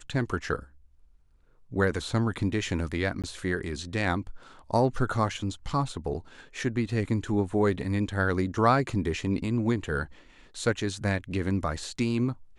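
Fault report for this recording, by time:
3.22–3.24 s: dropout 17 ms

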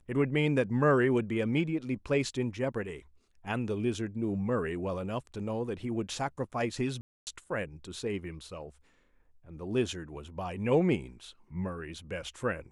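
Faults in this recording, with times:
7.01–7.27 s: dropout 259 ms

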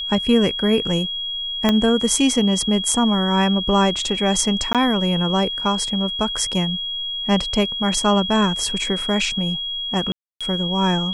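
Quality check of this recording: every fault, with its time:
whine 3.3 kHz -24 dBFS
1.69 s: pop -4 dBFS
4.73–4.75 s: dropout 17 ms
10.12–10.41 s: dropout 286 ms

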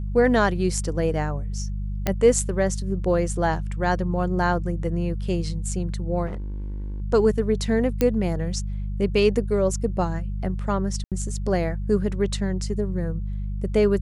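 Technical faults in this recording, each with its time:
hum 50 Hz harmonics 4 -28 dBFS
2.07 s: pop -8 dBFS
6.26–7.02 s: clipped -28 dBFS
8.01 s: pop -8 dBFS
11.04–11.12 s: dropout 77 ms

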